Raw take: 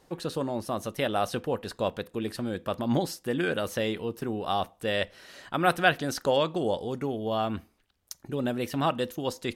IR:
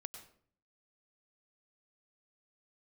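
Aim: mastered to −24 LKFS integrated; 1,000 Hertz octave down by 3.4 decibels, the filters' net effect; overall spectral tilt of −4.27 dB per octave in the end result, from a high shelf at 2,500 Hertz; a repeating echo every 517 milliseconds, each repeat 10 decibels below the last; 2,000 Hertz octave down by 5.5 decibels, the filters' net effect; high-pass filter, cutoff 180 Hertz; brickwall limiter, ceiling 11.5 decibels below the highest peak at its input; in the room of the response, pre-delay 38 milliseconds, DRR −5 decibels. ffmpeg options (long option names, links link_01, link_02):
-filter_complex "[0:a]highpass=180,equalizer=frequency=1000:width_type=o:gain=-4,equalizer=frequency=2000:width_type=o:gain=-8.5,highshelf=frequency=2500:gain=4.5,alimiter=limit=-22dB:level=0:latency=1,aecho=1:1:517|1034|1551|2068:0.316|0.101|0.0324|0.0104,asplit=2[link_01][link_02];[1:a]atrim=start_sample=2205,adelay=38[link_03];[link_02][link_03]afir=irnorm=-1:irlink=0,volume=9dB[link_04];[link_01][link_04]amix=inputs=2:normalize=0,volume=4dB"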